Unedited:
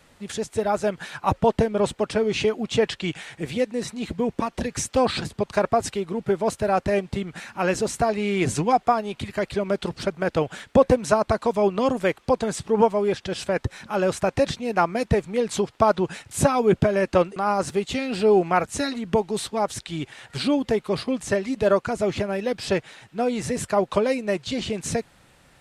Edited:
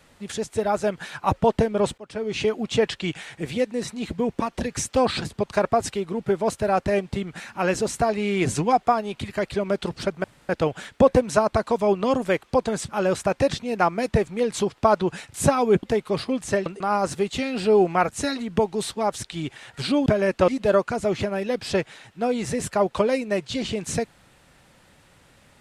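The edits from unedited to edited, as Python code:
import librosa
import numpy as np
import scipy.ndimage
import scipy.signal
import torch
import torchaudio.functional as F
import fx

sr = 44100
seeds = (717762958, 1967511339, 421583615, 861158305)

y = fx.edit(x, sr, fx.fade_in_from(start_s=1.98, length_s=0.54, floor_db=-23.0),
    fx.insert_room_tone(at_s=10.24, length_s=0.25),
    fx.cut(start_s=12.63, length_s=1.22),
    fx.swap(start_s=16.8, length_s=0.42, other_s=20.62, other_length_s=0.83), tone=tone)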